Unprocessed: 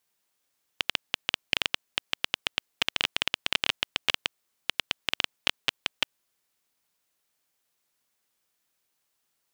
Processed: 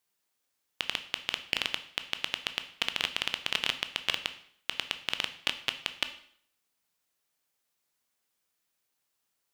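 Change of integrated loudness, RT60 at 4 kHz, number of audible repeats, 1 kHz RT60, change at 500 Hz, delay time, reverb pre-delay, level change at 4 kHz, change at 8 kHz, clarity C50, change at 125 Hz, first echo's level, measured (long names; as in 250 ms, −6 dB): −3.0 dB, 0.55 s, no echo audible, 0.60 s, −3.0 dB, no echo audible, 6 ms, −3.0 dB, −3.0 dB, 13.0 dB, −3.0 dB, no echo audible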